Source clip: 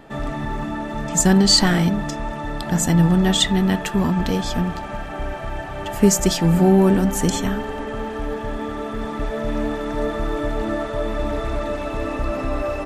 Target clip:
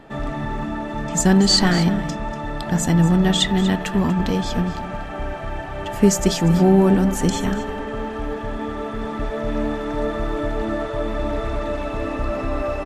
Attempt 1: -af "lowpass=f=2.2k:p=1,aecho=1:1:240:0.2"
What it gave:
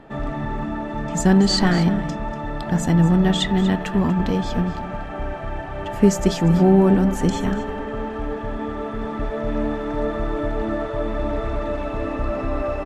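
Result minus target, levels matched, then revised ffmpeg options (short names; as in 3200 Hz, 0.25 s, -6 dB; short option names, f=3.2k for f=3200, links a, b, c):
8000 Hz band -6.5 dB
-af "lowpass=f=6.2k:p=1,aecho=1:1:240:0.2"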